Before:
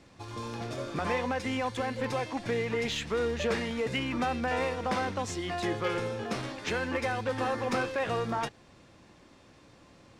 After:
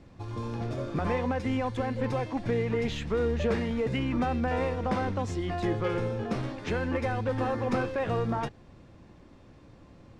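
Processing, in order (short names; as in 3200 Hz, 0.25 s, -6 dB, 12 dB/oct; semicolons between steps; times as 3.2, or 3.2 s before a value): tilt -2.5 dB/oct; gain -1 dB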